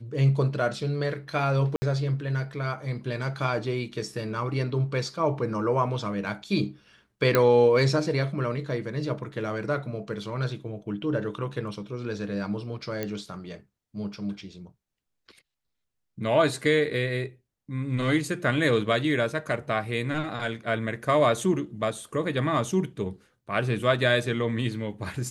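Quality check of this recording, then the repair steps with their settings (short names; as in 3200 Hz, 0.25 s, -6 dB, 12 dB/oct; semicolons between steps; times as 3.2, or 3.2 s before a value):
1.76–1.82 gap 60 ms
7.35 pop -7 dBFS
13.03 pop -16 dBFS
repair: de-click; interpolate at 1.76, 60 ms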